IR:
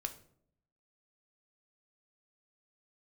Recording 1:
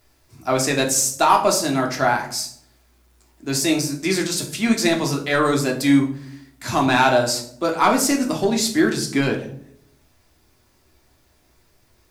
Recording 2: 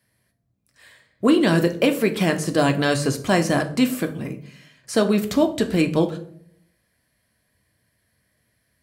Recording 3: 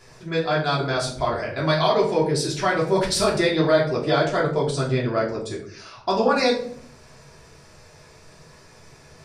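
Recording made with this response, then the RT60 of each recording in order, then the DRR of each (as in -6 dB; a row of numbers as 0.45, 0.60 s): 2; 0.65, 0.65, 0.65 s; 0.5, 5.5, -5.5 dB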